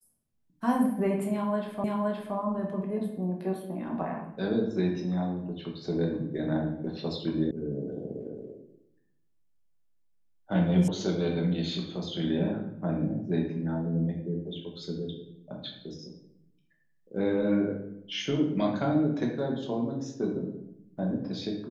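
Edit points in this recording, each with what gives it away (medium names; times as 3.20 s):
1.84 s: repeat of the last 0.52 s
7.51 s: sound stops dead
10.88 s: sound stops dead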